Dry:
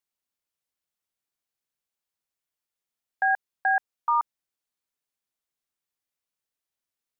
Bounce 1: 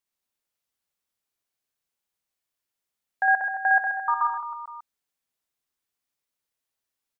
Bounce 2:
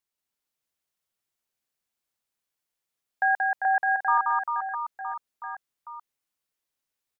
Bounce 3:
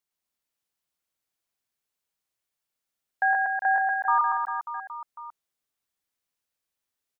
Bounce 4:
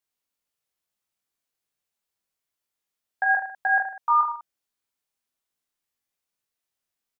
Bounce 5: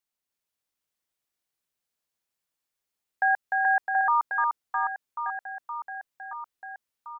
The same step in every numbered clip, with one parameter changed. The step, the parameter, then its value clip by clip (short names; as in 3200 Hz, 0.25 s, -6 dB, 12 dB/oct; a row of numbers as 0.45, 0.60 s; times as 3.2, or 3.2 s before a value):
reverse bouncing-ball echo, first gap: 60, 180, 110, 20, 300 ms